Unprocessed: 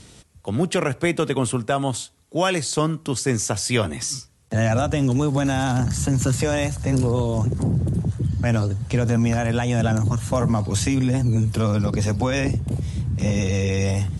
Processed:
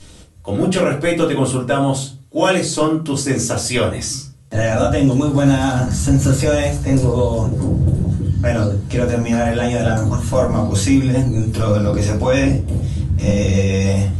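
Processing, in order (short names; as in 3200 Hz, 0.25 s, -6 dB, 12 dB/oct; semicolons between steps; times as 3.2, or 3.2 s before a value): shoebox room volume 140 m³, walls furnished, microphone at 2.7 m; gain -1.5 dB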